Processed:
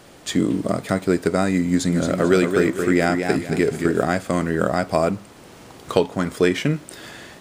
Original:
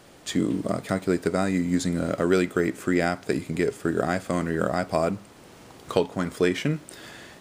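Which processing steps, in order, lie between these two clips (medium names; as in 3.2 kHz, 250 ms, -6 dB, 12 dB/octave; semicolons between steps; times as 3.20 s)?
1.66–4.04 s: modulated delay 223 ms, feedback 34%, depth 98 cents, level -6 dB; trim +4.5 dB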